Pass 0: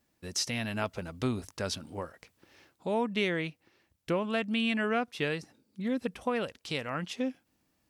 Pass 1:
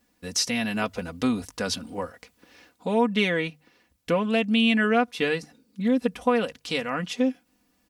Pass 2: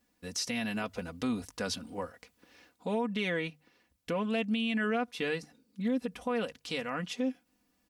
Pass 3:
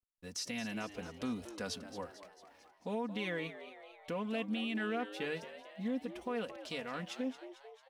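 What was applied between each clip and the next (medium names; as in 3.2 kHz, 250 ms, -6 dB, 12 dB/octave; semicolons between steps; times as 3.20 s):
hum notches 50/100/150 Hz; comb 4.1 ms, depth 63%; trim +5 dB
peak limiter -17 dBFS, peak gain reduction 7 dB; trim -6 dB
hysteresis with a dead band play -57 dBFS; frequency-shifting echo 223 ms, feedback 59%, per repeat +94 Hz, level -13 dB; trim -6 dB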